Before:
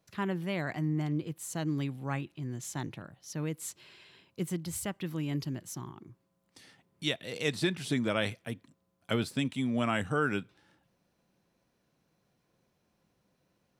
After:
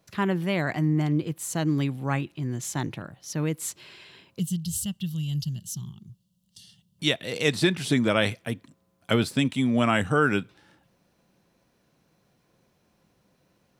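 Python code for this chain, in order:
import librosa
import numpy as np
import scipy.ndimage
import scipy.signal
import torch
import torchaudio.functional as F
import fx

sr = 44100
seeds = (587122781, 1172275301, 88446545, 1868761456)

y = fx.spec_box(x, sr, start_s=4.4, length_s=2.59, low_hz=230.0, high_hz=2700.0, gain_db=-21)
y = y * 10.0 ** (7.5 / 20.0)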